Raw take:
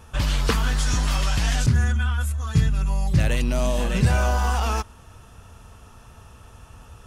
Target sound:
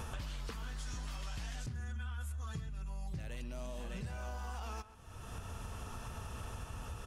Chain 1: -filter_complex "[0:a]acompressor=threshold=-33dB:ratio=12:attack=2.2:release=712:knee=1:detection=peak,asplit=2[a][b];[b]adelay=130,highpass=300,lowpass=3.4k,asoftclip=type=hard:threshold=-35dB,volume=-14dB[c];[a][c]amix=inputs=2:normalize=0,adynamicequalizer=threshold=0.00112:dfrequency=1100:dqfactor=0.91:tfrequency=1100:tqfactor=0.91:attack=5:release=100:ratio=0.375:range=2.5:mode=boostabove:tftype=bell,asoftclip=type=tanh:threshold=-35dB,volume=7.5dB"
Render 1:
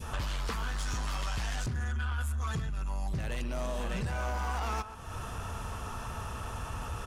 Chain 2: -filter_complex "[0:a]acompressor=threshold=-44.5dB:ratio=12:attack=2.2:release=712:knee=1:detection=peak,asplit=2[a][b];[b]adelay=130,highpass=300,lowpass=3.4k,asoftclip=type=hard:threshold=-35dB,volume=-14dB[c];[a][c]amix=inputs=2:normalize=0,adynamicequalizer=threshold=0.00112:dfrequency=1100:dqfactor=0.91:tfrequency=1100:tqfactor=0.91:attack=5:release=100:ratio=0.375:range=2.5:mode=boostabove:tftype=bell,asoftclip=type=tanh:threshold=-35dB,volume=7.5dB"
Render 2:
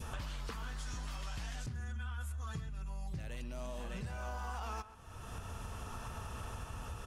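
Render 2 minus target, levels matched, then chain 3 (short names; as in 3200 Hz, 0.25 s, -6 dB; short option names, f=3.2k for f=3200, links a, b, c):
1000 Hz band +2.5 dB
-filter_complex "[0:a]acompressor=threshold=-44.5dB:ratio=12:attack=2.2:release=712:knee=1:detection=peak,asplit=2[a][b];[b]adelay=130,highpass=300,lowpass=3.4k,asoftclip=type=hard:threshold=-35dB,volume=-14dB[c];[a][c]amix=inputs=2:normalize=0,asoftclip=type=tanh:threshold=-35dB,volume=7.5dB"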